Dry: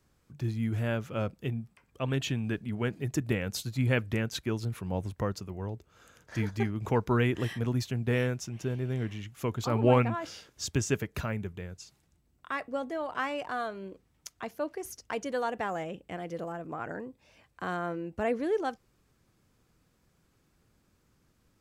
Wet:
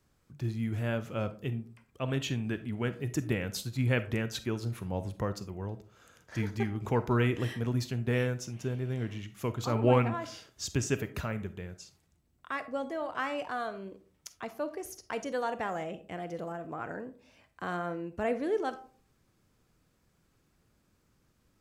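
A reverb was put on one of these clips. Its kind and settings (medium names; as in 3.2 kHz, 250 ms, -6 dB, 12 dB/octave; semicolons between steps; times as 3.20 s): algorithmic reverb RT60 0.44 s, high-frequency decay 0.4×, pre-delay 5 ms, DRR 11.5 dB; trim -1.5 dB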